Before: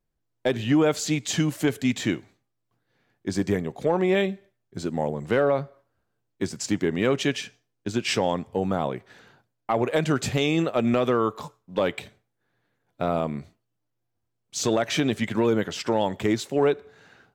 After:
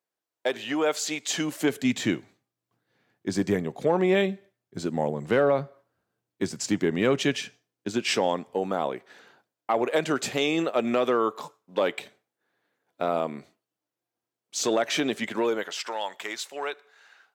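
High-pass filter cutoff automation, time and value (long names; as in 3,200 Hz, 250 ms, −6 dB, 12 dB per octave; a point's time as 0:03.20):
0:01.21 480 Hz
0:02.03 120 Hz
0:07.43 120 Hz
0:08.53 290 Hz
0:15.28 290 Hz
0:15.93 970 Hz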